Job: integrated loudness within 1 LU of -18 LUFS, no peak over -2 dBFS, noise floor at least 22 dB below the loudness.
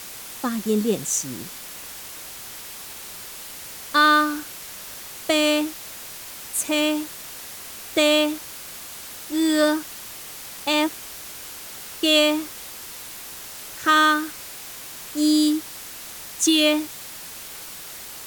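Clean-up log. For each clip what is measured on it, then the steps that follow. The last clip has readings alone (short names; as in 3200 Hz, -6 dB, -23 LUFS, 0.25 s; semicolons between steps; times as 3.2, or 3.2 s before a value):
noise floor -38 dBFS; noise floor target -44 dBFS; loudness -21.5 LUFS; peak -6.5 dBFS; loudness target -18.0 LUFS
-> noise print and reduce 6 dB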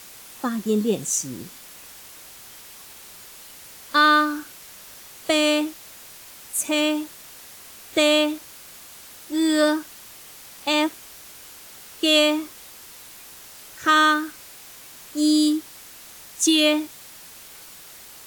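noise floor -44 dBFS; loudness -21.0 LUFS; peak -6.5 dBFS; loudness target -18.0 LUFS
-> gain +3 dB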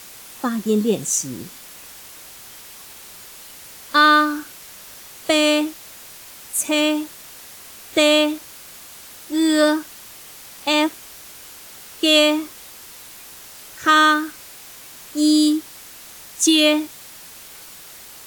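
loudness -18.0 LUFS; peak -3.5 dBFS; noise floor -41 dBFS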